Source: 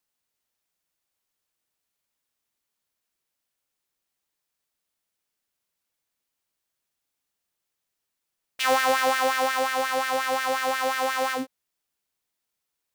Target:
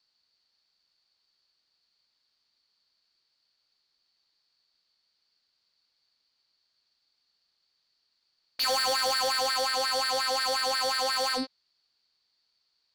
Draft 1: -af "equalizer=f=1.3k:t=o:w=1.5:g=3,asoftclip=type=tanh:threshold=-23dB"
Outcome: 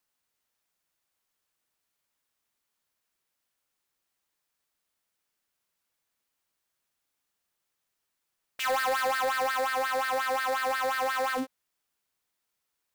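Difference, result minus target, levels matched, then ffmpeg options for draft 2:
4000 Hz band -9.0 dB
-af "lowpass=f=4.5k:t=q:w=15,equalizer=f=1.3k:t=o:w=1.5:g=3,asoftclip=type=tanh:threshold=-23dB"

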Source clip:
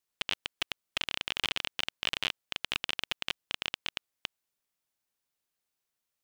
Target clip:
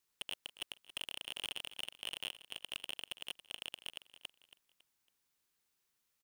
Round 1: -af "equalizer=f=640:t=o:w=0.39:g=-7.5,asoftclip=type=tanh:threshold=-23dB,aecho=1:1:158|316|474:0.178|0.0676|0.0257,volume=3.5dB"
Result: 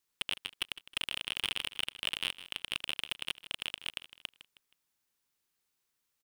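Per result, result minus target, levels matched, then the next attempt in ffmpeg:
echo 0.119 s early; soft clip: distortion -6 dB
-af "equalizer=f=640:t=o:w=0.39:g=-7.5,asoftclip=type=tanh:threshold=-23dB,aecho=1:1:277|554|831:0.178|0.0676|0.0257,volume=3.5dB"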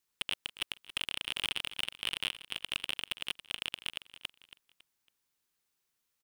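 soft clip: distortion -6 dB
-af "equalizer=f=640:t=o:w=0.39:g=-7.5,asoftclip=type=tanh:threshold=-33.5dB,aecho=1:1:277|554|831:0.178|0.0676|0.0257,volume=3.5dB"

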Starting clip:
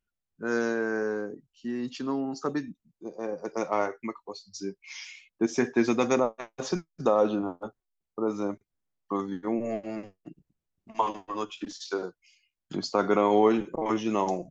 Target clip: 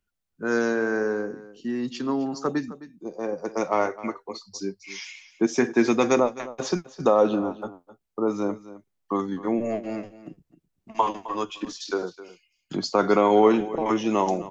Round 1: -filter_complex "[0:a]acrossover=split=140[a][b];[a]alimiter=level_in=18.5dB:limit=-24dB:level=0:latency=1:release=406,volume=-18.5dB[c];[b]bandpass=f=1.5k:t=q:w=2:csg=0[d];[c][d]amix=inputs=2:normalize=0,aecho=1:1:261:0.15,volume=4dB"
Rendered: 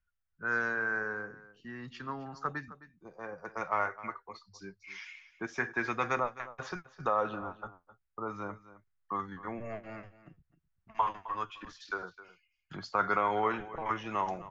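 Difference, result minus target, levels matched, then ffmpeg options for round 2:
2000 Hz band +9.0 dB
-filter_complex "[0:a]acrossover=split=140[a][b];[a]alimiter=level_in=18.5dB:limit=-24dB:level=0:latency=1:release=406,volume=-18.5dB[c];[c][b]amix=inputs=2:normalize=0,aecho=1:1:261:0.15,volume=4dB"

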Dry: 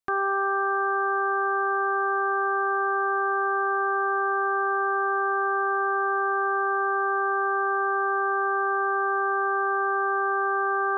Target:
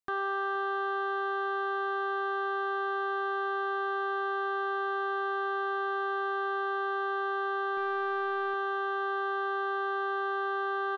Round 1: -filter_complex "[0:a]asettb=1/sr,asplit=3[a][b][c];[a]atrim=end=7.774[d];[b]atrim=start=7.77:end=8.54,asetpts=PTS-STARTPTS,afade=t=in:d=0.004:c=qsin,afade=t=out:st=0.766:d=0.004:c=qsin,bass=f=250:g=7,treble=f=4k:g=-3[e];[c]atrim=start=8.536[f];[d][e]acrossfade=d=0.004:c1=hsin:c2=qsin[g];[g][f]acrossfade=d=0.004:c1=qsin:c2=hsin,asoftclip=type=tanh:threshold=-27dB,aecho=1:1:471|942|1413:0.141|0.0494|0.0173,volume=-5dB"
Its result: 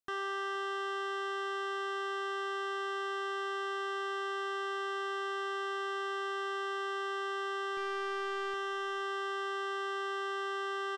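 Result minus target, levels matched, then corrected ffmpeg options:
soft clip: distortion +13 dB
-filter_complex "[0:a]asettb=1/sr,asplit=3[a][b][c];[a]atrim=end=7.774[d];[b]atrim=start=7.77:end=8.54,asetpts=PTS-STARTPTS,afade=t=in:d=0.004:c=qsin,afade=t=out:st=0.766:d=0.004:c=qsin,bass=f=250:g=7,treble=f=4k:g=-3[e];[c]atrim=start=8.536[f];[d][e]acrossfade=d=0.004:c1=hsin:c2=qsin[g];[g][f]acrossfade=d=0.004:c1=qsin:c2=hsin,asoftclip=type=tanh:threshold=-17.5dB,aecho=1:1:471|942|1413:0.141|0.0494|0.0173,volume=-5dB"

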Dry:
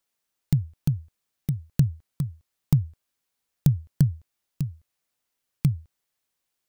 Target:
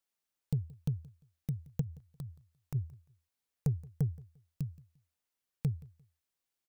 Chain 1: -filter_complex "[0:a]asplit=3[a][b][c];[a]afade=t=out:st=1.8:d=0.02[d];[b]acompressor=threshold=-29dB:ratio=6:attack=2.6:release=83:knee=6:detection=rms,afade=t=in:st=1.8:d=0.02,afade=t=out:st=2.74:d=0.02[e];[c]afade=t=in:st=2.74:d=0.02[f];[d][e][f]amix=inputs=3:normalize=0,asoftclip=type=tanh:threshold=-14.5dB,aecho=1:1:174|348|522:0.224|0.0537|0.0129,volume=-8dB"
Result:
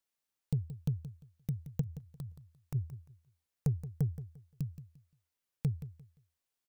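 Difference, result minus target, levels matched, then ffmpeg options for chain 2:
echo-to-direct +9 dB
-filter_complex "[0:a]asplit=3[a][b][c];[a]afade=t=out:st=1.8:d=0.02[d];[b]acompressor=threshold=-29dB:ratio=6:attack=2.6:release=83:knee=6:detection=rms,afade=t=in:st=1.8:d=0.02,afade=t=out:st=2.74:d=0.02[e];[c]afade=t=in:st=2.74:d=0.02[f];[d][e][f]amix=inputs=3:normalize=0,asoftclip=type=tanh:threshold=-14.5dB,aecho=1:1:174|348:0.0794|0.0191,volume=-8dB"

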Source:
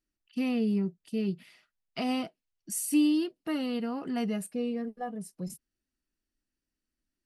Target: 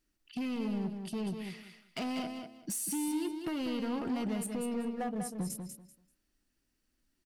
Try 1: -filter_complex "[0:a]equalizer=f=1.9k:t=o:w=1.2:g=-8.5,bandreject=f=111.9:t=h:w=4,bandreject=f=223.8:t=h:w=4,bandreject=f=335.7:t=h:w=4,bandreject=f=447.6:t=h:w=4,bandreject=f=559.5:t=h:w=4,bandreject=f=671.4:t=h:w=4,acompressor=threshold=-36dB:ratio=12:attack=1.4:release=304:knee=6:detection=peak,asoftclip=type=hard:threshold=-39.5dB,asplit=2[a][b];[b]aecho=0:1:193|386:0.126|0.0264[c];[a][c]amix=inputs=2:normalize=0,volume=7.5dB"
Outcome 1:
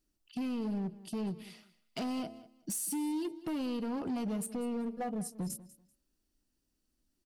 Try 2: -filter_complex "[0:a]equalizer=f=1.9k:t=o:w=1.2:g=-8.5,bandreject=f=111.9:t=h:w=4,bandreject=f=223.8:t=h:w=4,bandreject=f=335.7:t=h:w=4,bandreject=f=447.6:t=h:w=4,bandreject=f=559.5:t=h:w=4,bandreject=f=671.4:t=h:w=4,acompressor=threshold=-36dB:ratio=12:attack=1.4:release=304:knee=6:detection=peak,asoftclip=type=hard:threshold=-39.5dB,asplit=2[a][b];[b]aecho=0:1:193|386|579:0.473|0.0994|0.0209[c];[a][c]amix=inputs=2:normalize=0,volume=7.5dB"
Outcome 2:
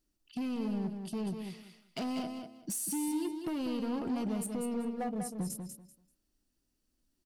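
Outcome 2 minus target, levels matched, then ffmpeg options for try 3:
2000 Hz band -4.5 dB
-filter_complex "[0:a]bandreject=f=111.9:t=h:w=4,bandreject=f=223.8:t=h:w=4,bandreject=f=335.7:t=h:w=4,bandreject=f=447.6:t=h:w=4,bandreject=f=559.5:t=h:w=4,bandreject=f=671.4:t=h:w=4,acompressor=threshold=-36dB:ratio=12:attack=1.4:release=304:knee=6:detection=peak,asoftclip=type=hard:threshold=-39.5dB,asplit=2[a][b];[b]aecho=0:1:193|386|579:0.473|0.0994|0.0209[c];[a][c]amix=inputs=2:normalize=0,volume=7.5dB"

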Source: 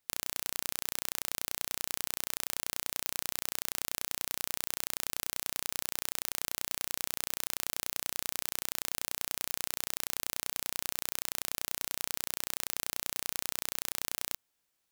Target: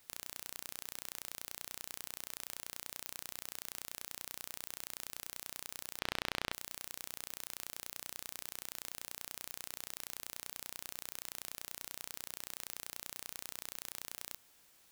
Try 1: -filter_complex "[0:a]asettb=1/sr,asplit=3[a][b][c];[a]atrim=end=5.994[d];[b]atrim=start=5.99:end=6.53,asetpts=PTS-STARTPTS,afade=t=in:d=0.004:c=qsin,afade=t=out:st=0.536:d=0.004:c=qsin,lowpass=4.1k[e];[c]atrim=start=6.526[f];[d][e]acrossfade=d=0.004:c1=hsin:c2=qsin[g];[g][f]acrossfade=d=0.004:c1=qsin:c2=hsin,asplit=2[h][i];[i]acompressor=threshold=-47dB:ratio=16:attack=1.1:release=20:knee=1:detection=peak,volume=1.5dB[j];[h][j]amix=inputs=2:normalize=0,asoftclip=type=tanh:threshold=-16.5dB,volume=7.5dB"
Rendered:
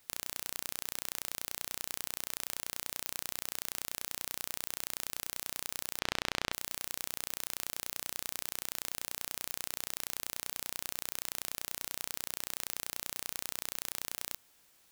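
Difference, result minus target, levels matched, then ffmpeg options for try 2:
soft clip: distortion -4 dB
-filter_complex "[0:a]asettb=1/sr,asplit=3[a][b][c];[a]atrim=end=5.994[d];[b]atrim=start=5.99:end=6.53,asetpts=PTS-STARTPTS,afade=t=in:d=0.004:c=qsin,afade=t=out:st=0.536:d=0.004:c=qsin,lowpass=4.1k[e];[c]atrim=start=6.526[f];[d][e]acrossfade=d=0.004:c1=hsin:c2=qsin[g];[g][f]acrossfade=d=0.004:c1=qsin:c2=hsin,asplit=2[h][i];[i]acompressor=threshold=-47dB:ratio=16:attack=1.1:release=20:knee=1:detection=peak,volume=1.5dB[j];[h][j]amix=inputs=2:normalize=0,asoftclip=type=tanh:threshold=-23dB,volume=7.5dB"

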